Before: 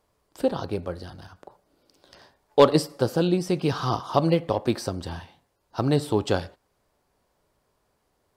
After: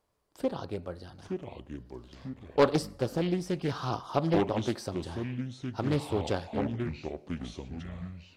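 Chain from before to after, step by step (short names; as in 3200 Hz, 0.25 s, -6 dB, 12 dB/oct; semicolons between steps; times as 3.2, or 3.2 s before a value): echoes that change speed 0.687 s, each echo -6 st, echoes 2, each echo -6 dB; Doppler distortion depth 0.43 ms; gain -7 dB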